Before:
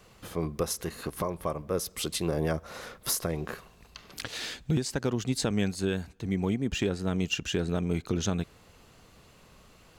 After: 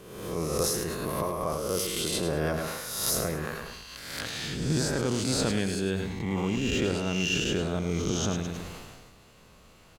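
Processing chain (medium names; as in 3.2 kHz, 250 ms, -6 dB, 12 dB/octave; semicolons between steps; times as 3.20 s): reverse spectral sustain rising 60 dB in 1.09 s; feedback delay 104 ms, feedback 32%, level -9.5 dB; decay stretcher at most 33 dB/s; trim -2.5 dB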